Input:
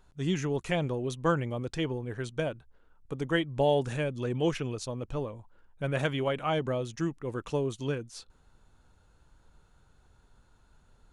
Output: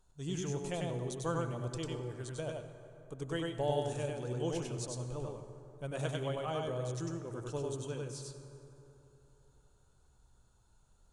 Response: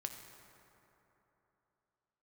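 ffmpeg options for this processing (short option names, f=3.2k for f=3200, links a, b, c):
-filter_complex "[0:a]equalizer=f=250:t=o:w=1:g=-4,equalizer=f=2k:t=o:w=1:g=-8,equalizer=f=8k:t=o:w=1:g=9,asplit=2[a][b];[1:a]atrim=start_sample=2205,adelay=97[c];[b][c]afir=irnorm=-1:irlink=0,volume=1dB[d];[a][d]amix=inputs=2:normalize=0,volume=-8dB"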